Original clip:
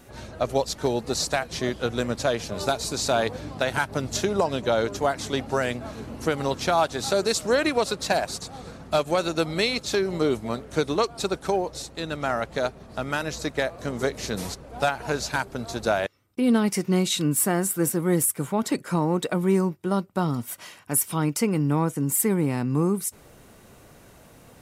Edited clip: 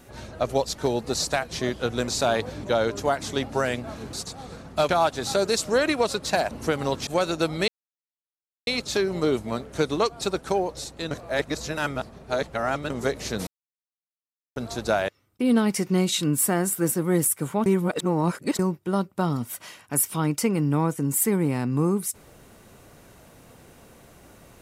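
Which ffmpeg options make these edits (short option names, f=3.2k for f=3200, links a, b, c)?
-filter_complex "[0:a]asplit=14[a][b][c][d][e][f][g][h][i][j][k][l][m][n];[a]atrim=end=2.082[o];[b]atrim=start=2.948:end=3.502[p];[c]atrim=start=4.598:end=6.102[q];[d]atrim=start=8.278:end=9.042[r];[e]atrim=start=6.658:end=8.282[s];[f]atrim=start=6.098:end=6.662[t];[g]atrim=start=9.038:end=9.65,asetpts=PTS-STARTPTS,afade=t=out:st=0.608:d=0.004:c=hsin,apad=pad_dur=0.99[u];[h]atrim=start=9.65:end=12.092,asetpts=PTS-STARTPTS,afade=t=in:d=0.004:c=hsin[v];[i]atrim=start=12.088:end=13.882,asetpts=PTS-STARTPTS,areverse[w];[j]atrim=start=13.878:end=14.45,asetpts=PTS-STARTPTS,afade=t=out:st=0.568:d=0.004:c=hsin[x];[k]atrim=start=14.45:end=15.54,asetpts=PTS-STARTPTS,volume=0[y];[l]atrim=start=15.54:end=18.642,asetpts=PTS-STARTPTS,afade=t=in:d=0.004:c=hsin[z];[m]atrim=start=18.638:end=19.572,asetpts=PTS-STARTPTS,areverse[aa];[n]atrim=start=19.568[ab];[o][p]acrossfade=d=0.004:c1=hsin:c2=hsin[ac];[ac][q]acrossfade=d=0.004:c1=hsin:c2=hsin[ad];[ad][r]acrossfade=d=0.004:c1=hsin:c2=hsin[ae];[ae][s]acrossfade=d=0.004:c1=hsin:c2=hsin[af];[af][t]acrossfade=d=0.004:c1=hsin:c2=hsin[ag];[u][v]concat=n=2:v=0:a=1[ah];[ag][ah]acrossfade=d=0.004:c1=hsin:c2=hsin[ai];[ai][w]acrossfade=d=0.004:c1=hsin:c2=hsin[aj];[x][y][z]concat=n=3:v=0:a=1[ak];[aj][ak]acrossfade=d=0.004:c1=hsin:c2=hsin[al];[al][aa]acrossfade=d=0.004:c1=hsin:c2=hsin[am];[am][ab]acrossfade=d=0.004:c1=hsin:c2=hsin"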